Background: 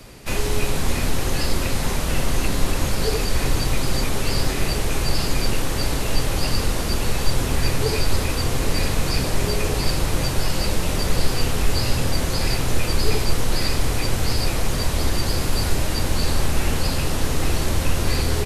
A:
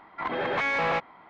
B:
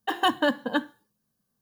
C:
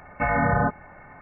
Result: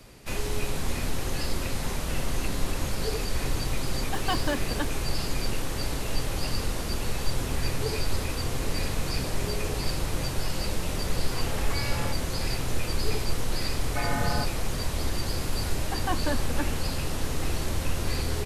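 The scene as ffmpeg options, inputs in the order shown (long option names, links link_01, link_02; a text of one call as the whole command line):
ffmpeg -i bed.wav -i cue0.wav -i cue1.wav -i cue2.wav -filter_complex "[2:a]asplit=2[link_01][link_02];[0:a]volume=-7.5dB[link_03];[link_01]acrusher=bits=7:mix=0:aa=0.5[link_04];[1:a]afreqshift=31[link_05];[link_02]lowpass=2000[link_06];[link_04]atrim=end=1.61,asetpts=PTS-STARTPTS,volume=-6.5dB,afade=type=in:duration=0.004:curve=hsin,afade=type=out:start_time=1.606:duration=0.004:curve=hsin,adelay=178605S[link_07];[link_05]atrim=end=1.29,asetpts=PTS-STARTPTS,volume=-11dB,afade=type=in:duration=0.004:curve=hsin,afade=type=out:start_time=1.286:duration=0.004:curve=hsin,adelay=11130[link_08];[3:a]atrim=end=1.21,asetpts=PTS-STARTPTS,volume=-8.5dB,afade=type=in:duration=0.004:curve=hsin,afade=type=out:start_time=1.206:duration=0.004:curve=hsin,adelay=13750[link_09];[link_06]atrim=end=1.61,asetpts=PTS-STARTPTS,volume=-7dB,afade=type=in:duration=0.004:curve=hsin,afade=type=out:start_time=1.606:duration=0.004:curve=hsin,adelay=15840[link_10];[link_03][link_07][link_08][link_09][link_10]amix=inputs=5:normalize=0" out.wav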